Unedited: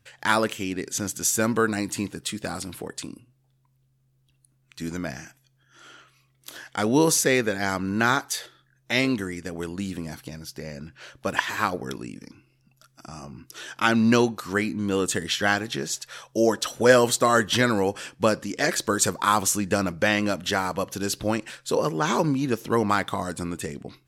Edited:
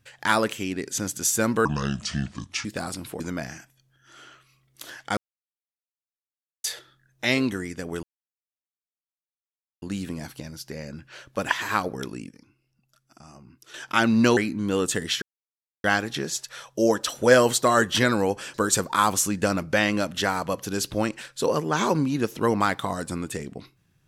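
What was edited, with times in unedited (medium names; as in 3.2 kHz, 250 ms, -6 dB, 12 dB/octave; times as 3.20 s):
1.65–2.33 s: speed 68%
2.88–4.87 s: delete
6.84–8.31 s: mute
9.70 s: insert silence 1.79 s
12.17–13.62 s: gain -8.5 dB
14.25–14.57 s: delete
15.42 s: insert silence 0.62 s
18.12–18.83 s: delete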